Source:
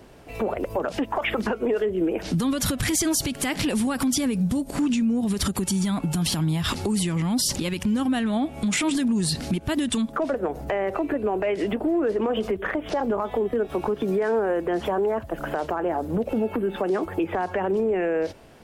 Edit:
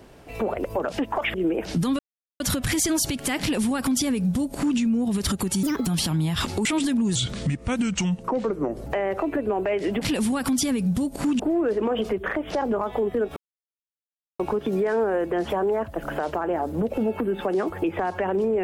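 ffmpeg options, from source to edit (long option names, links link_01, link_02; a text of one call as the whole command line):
ffmpeg -i in.wav -filter_complex "[0:a]asplit=11[link_01][link_02][link_03][link_04][link_05][link_06][link_07][link_08][link_09][link_10][link_11];[link_01]atrim=end=1.342[link_12];[link_02]atrim=start=1.908:end=2.56,asetpts=PTS-STARTPTS,afade=type=out:start_time=0.648:duration=0.004:curve=hsin,apad=pad_dur=0.41[link_13];[link_03]atrim=start=2.56:end=5.794,asetpts=PTS-STARTPTS,afade=type=in:duration=0.004:curve=hsin[link_14];[link_04]atrim=start=5.79:end=6.14,asetpts=PTS-STARTPTS,asetrate=66591,aresample=44100[link_15];[link_05]atrim=start=6.136:end=6.932[link_16];[link_06]atrim=start=8.758:end=9.264[link_17];[link_07]atrim=start=9.26:end=10.63,asetpts=PTS-STARTPTS,asetrate=35280,aresample=44100,atrim=end_sample=75521,asetpts=PTS-STARTPTS[link_18];[link_08]atrim=start=10.626:end=11.782[link_19];[link_09]atrim=start=3.558:end=4.942[link_20];[link_10]atrim=start=11.778:end=13.75,asetpts=PTS-STARTPTS,afade=type=out:start_time=1.968:duration=0.004:curve=hsin,apad=pad_dur=1.03[link_21];[link_11]atrim=start=13.75,asetpts=PTS-STARTPTS,afade=type=in:duration=0.004:curve=hsin[link_22];[link_13][link_14]concat=n=2:v=0:a=1[link_23];[link_12][link_23]acrossfade=duration=0.004:curve1=hsin:curve2=hsin[link_24];[link_24][link_15]acrossfade=duration=0.004:curve1=hsin:curve2=hsin[link_25];[link_25][link_16]acrossfade=duration=0.004:curve1=hsin:curve2=hsin[link_26];[link_26][link_17]acrossfade=duration=0.004:curve1=hsin:curve2=hsin[link_27];[link_27][link_18]acrossfade=duration=0.004:curve1=hsin:curve2=hsin[link_28];[link_28][link_19]acrossfade=duration=0.004:curve1=hsin:curve2=hsin[link_29];[link_29][link_20]acrossfade=duration=0.004:curve1=hsin:curve2=hsin[link_30];[link_21][link_22]concat=n=2:v=0:a=1[link_31];[link_30][link_31]acrossfade=duration=0.004:curve1=hsin:curve2=hsin" out.wav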